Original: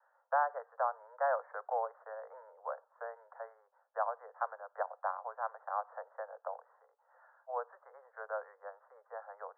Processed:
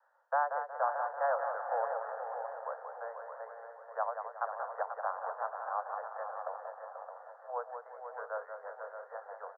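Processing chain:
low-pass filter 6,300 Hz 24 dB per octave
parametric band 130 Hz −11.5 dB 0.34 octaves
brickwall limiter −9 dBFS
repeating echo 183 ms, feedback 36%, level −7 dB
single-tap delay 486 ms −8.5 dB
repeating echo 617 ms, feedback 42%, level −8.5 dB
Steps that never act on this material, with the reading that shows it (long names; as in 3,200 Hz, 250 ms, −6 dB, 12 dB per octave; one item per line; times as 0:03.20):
low-pass filter 6,300 Hz: nothing at its input above 1,900 Hz
parametric band 130 Hz: nothing at its input below 400 Hz
brickwall limiter −9 dBFS: peak of its input −20.5 dBFS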